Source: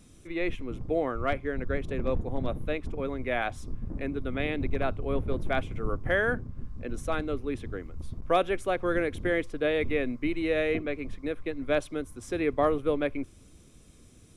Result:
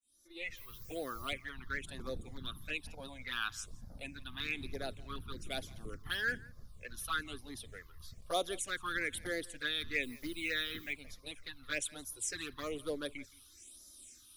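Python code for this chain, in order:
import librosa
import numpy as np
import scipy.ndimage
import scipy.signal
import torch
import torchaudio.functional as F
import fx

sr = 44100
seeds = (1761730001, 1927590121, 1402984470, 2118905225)

p1 = fx.fade_in_head(x, sr, length_s=0.87)
p2 = fx.dmg_noise_colour(p1, sr, seeds[0], colour='white', level_db=-66.0, at=(0.56, 1.27), fade=0.02)
p3 = np.clip(p2, -10.0 ** (-21.0 / 20.0), 10.0 ** (-21.0 / 20.0))
p4 = p2 + F.gain(torch.from_numpy(p3), -4.5).numpy()
p5 = fx.quant_dither(p4, sr, seeds[1], bits=10, dither='none', at=(10.03, 10.93))
p6 = fx.env_flanger(p5, sr, rest_ms=3.5, full_db=-16.5)
p7 = scipy.signal.lfilter([1.0, -0.97], [1.0], p6)
p8 = fx.phaser_stages(p7, sr, stages=6, low_hz=540.0, high_hz=2600.0, hz=1.1, feedback_pct=20)
p9 = p8 + fx.echo_single(p8, sr, ms=169, db=-23.0, dry=0)
y = F.gain(torch.from_numpy(p9), 10.5).numpy()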